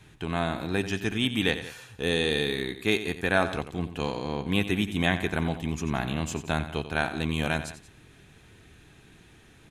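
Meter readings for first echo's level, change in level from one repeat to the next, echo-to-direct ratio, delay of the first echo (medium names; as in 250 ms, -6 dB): -12.0 dB, -5.0 dB, -11.0 dB, 89 ms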